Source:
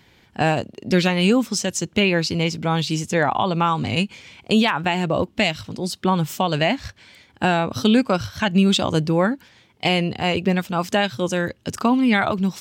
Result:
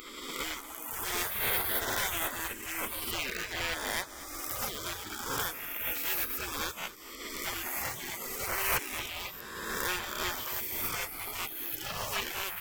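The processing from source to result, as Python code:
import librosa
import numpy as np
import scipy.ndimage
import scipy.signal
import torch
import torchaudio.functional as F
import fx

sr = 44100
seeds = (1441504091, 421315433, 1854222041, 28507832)

p1 = fx.spec_swells(x, sr, rise_s=1.7)
p2 = 10.0 ** (-16.0 / 20.0) * (np.abs((p1 / 10.0 ** (-16.0 / 20.0) + 3.0) % 4.0 - 2.0) - 1.0)
p3 = p1 + (p2 * librosa.db_to_amplitude(-5.0))
p4 = fx.tone_stack(p3, sr, knobs='10-0-10')
p5 = fx.notch(p4, sr, hz=1200.0, q=21.0)
p6 = fx.spec_gate(p5, sr, threshold_db=-20, keep='weak')
p7 = fx.band_shelf(p6, sr, hz=6300.0, db=-11.5, octaves=1.7)
p8 = np.clip(p7, -10.0 ** (-30.5 / 20.0), 10.0 ** (-30.5 / 20.0))
p9 = p8 + fx.echo_single(p8, sr, ms=237, db=-16.5, dry=0)
y = p9 * librosa.db_to_amplitude(7.5)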